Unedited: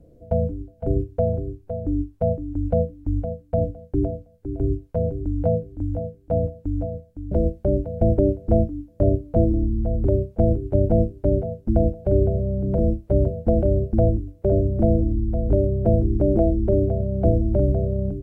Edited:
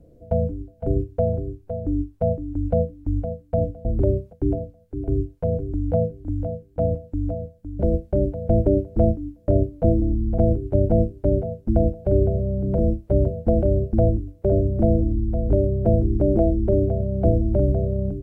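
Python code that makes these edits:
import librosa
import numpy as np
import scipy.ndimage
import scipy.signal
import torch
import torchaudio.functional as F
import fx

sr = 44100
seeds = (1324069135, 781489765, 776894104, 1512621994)

y = fx.edit(x, sr, fx.move(start_s=9.9, length_s=0.48, to_s=3.85), tone=tone)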